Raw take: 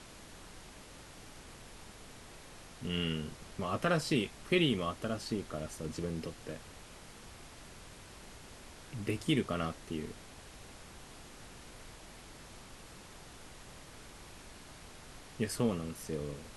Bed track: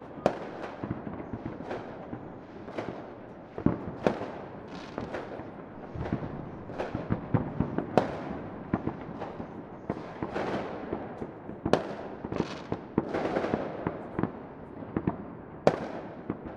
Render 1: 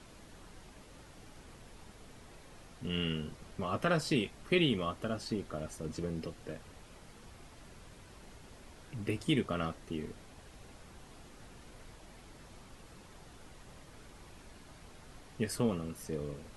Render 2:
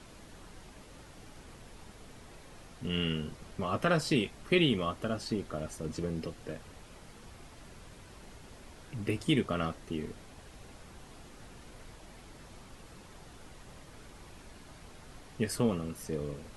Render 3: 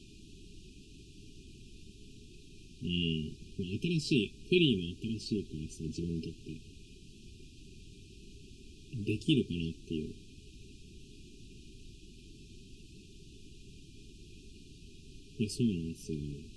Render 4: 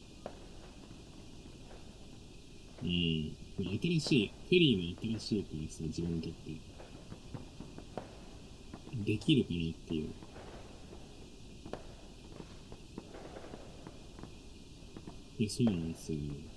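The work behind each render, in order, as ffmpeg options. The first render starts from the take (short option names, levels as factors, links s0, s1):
-af "afftdn=nr=6:nf=-53"
-af "volume=1.33"
-af "lowpass=7000,afftfilt=real='re*(1-between(b*sr/4096,420,2400))':imag='im*(1-between(b*sr/4096,420,2400))':win_size=4096:overlap=0.75"
-filter_complex "[1:a]volume=0.1[s0];[0:a][s0]amix=inputs=2:normalize=0"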